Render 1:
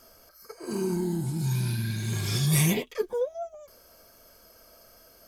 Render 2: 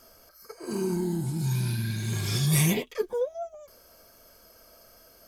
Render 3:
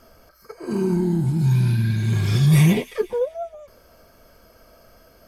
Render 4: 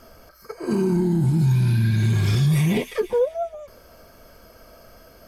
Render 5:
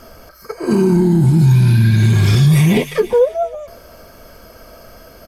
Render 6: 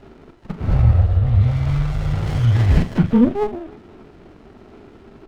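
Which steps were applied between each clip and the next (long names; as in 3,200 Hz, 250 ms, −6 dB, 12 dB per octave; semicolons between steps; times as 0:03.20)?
no processing that can be heard
bass and treble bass +5 dB, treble −10 dB; delay with a high-pass on its return 176 ms, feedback 48%, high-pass 2,000 Hz, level −15 dB; level +5 dB
brickwall limiter −16.5 dBFS, peak gain reduction 10 dB; level +3.5 dB
slap from a distant wall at 52 metres, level −24 dB; level +8 dB
flutter between parallel walls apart 7.3 metres, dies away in 0.25 s; single-sideband voice off tune −260 Hz 160–3,600 Hz; windowed peak hold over 33 samples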